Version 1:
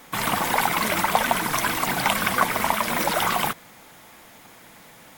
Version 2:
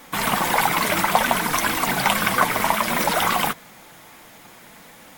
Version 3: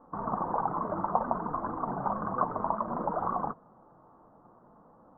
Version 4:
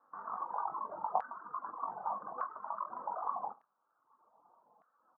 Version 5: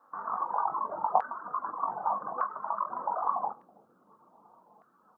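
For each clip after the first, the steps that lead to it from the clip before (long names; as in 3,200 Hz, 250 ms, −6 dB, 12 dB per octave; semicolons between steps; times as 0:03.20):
flanger 0.6 Hz, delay 3.5 ms, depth 3.5 ms, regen −58%; level +6.5 dB
elliptic low-pass filter 1,200 Hz, stop band 50 dB; level −8 dB
reverse bouncing-ball delay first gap 20 ms, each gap 1.15×, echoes 5; auto-filter band-pass saw down 0.83 Hz 800–1,600 Hz; reverb reduction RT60 1.2 s; level −4 dB
bucket-brigade delay 325 ms, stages 1,024, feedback 78%, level −14 dB; level +7.5 dB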